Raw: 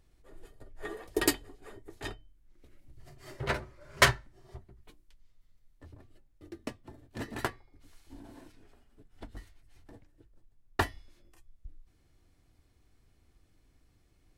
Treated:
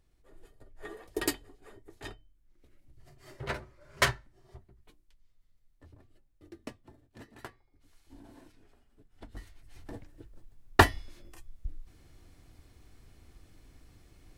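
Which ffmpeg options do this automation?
ffmpeg -i in.wav -af "volume=21.5dB,afade=type=out:start_time=6.76:duration=0.57:silence=0.251189,afade=type=in:start_time=7.33:duration=0.9:silence=0.223872,afade=type=in:start_time=9.25:duration=0.69:silence=0.237137" out.wav

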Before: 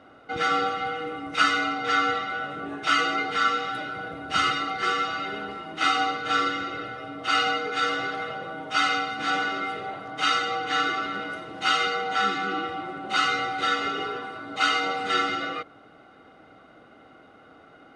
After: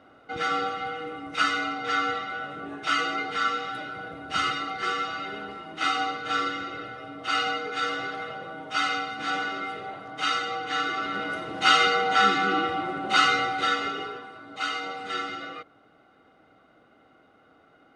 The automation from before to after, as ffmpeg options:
ffmpeg -i in.wav -af "volume=4dB,afade=type=in:start_time=10.88:duration=0.6:silence=0.446684,afade=type=out:start_time=13.04:duration=1.21:silence=0.281838" out.wav

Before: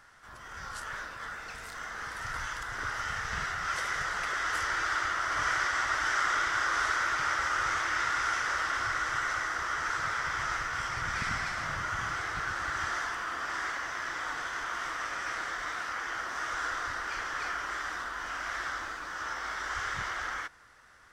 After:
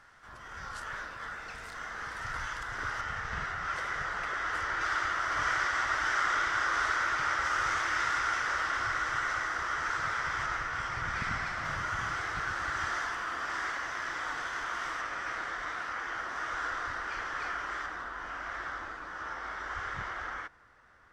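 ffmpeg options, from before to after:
ffmpeg -i in.wav -af "asetnsamples=nb_out_samples=441:pad=0,asendcmd='3.01 lowpass f 2100;4.81 lowpass f 4700;7.45 lowpass f 8700;8.19 lowpass f 5000;10.46 lowpass f 3000;11.65 lowpass f 6500;15.01 lowpass f 2900;17.86 lowpass f 1500',lowpass=frequency=4700:poles=1" out.wav

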